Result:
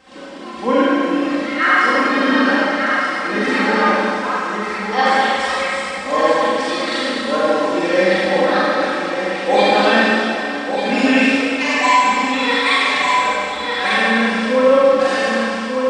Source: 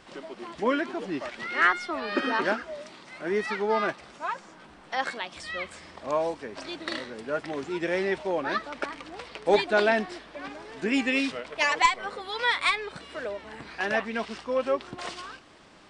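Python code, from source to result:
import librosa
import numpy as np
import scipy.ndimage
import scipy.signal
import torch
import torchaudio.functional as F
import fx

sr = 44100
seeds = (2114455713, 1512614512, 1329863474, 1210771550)

p1 = x + 0.84 * np.pad(x, (int(3.8 * sr / 1000.0), 0))[:len(x)]
p2 = p1 + fx.echo_single(p1, sr, ms=1198, db=-6.0, dry=0)
p3 = fx.rider(p2, sr, range_db=4, speed_s=2.0)
p4 = scipy.signal.sosfilt(scipy.signal.butter(2, 53.0, 'highpass', fs=sr, output='sos'), p3)
y = fx.rev_schroeder(p4, sr, rt60_s=2.5, comb_ms=31, drr_db=-8.5)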